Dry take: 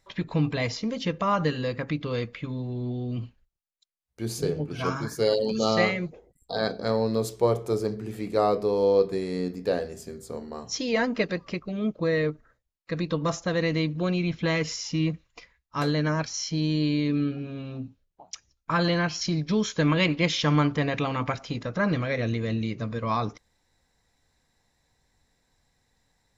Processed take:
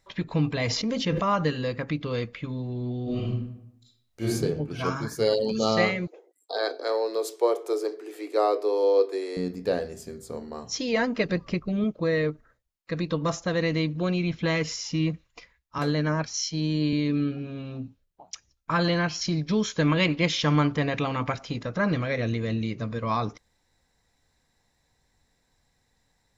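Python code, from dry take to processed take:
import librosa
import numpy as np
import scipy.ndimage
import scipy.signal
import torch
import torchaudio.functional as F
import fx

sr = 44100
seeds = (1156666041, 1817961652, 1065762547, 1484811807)

y = fx.sustainer(x, sr, db_per_s=26.0, at=(0.64, 1.31))
y = fx.reverb_throw(y, sr, start_s=3.03, length_s=1.22, rt60_s=0.81, drr_db=-8.5)
y = fx.steep_highpass(y, sr, hz=300.0, slope=72, at=(6.07, 9.37))
y = fx.low_shelf(y, sr, hz=220.0, db=9.0, at=(11.25, 11.84))
y = fx.band_widen(y, sr, depth_pct=70, at=(15.78, 16.93))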